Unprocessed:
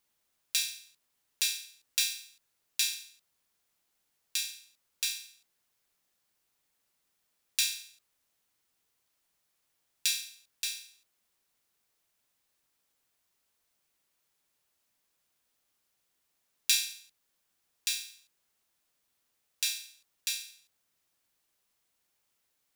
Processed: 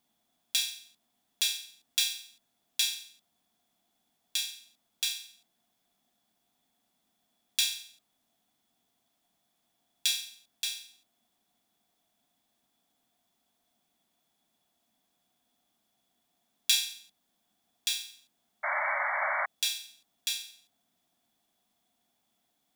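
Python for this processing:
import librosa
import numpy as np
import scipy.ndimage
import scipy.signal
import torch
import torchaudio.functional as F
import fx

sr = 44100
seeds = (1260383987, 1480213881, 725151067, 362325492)

y = fx.small_body(x, sr, hz=(230.0, 700.0, 3400.0), ring_ms=30, db=16)
y = fx.spec_paint(y, sr, seeds[0], shape='noise', start_s=18.63, length_s=0.83, low_hz=560.0, high_hz=2300.0, level_db=-29.0)
y = y * 10.0 ** (-1.0 / 20.0)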